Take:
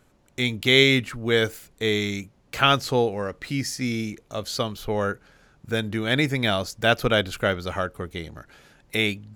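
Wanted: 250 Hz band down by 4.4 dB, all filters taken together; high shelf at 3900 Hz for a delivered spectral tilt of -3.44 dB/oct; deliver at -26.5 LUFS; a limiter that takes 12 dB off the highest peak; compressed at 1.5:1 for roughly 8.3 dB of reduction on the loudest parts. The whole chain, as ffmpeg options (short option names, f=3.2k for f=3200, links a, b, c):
-af "equalizer=f=250:t=o:g=-5.5,highshelf=f=3.9k:g=6.5,acompressor=threshold=-35dB:ratio=1.5,volume=6.5dB,alimiter=limit=-14dB:level=0:latency=1"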